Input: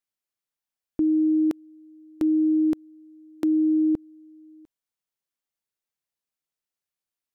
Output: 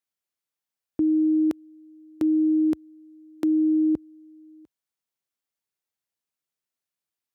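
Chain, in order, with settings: HPF 56 Hz 24 dB/oct

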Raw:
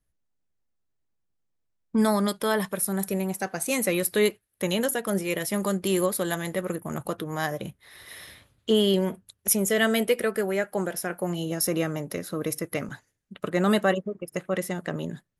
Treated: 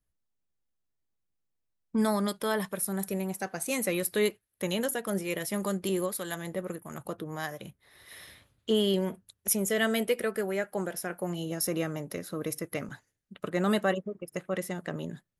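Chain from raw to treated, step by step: 5.89–8.12 harmonic tremolo 1.5 Hz, depth 50%, crossover 1000 Hz; gain -4.5 dB

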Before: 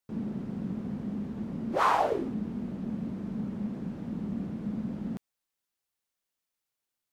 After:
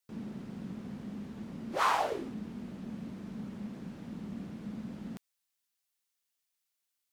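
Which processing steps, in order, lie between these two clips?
tilt shelf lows -5.5 dB, about 1400 Hz; gain -2 dB

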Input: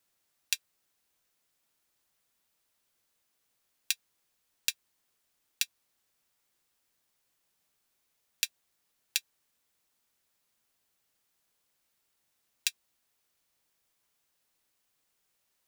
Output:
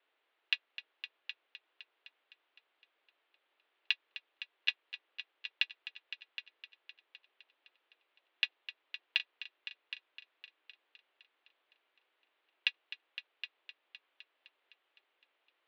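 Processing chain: multi-head echo 0.256 s, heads all three, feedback 42%, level -14 dB; mistuned SSB +100 Hz 220–3300 Hz; gain +5 dB

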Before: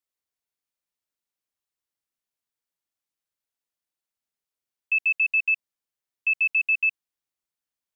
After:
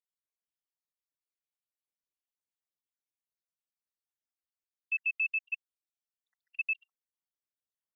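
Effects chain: random spectral dropouts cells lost 68%; 5.3–6.31 steep high-pass 2300 Hz; gain -8 dB

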